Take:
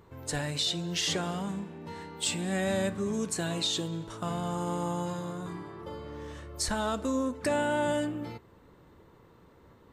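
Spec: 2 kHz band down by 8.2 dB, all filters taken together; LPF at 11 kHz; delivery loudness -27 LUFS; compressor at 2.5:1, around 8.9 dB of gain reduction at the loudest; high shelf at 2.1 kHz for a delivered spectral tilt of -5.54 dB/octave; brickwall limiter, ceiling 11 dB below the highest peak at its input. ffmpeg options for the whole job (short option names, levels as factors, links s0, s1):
-af "lowpass=11000,equalizer=f=2000:t=o:g=-7,highshelf=f=2100:g=-8.5,acompressor=threshold=0.01:ratio=2.5,volume=8.91,alimiter=limit=0.106:level=0:latency=1"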